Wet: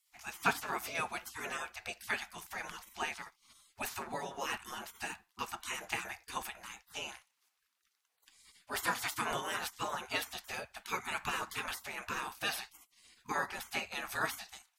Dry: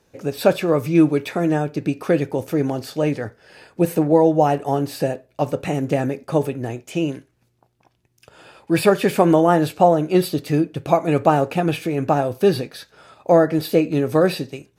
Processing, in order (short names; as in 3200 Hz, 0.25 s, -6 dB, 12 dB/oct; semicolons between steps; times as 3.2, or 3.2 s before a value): bell 590 Hz +9.5 dB 0.31 oct; spectral gate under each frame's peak -25 dB weak; gain -1 dB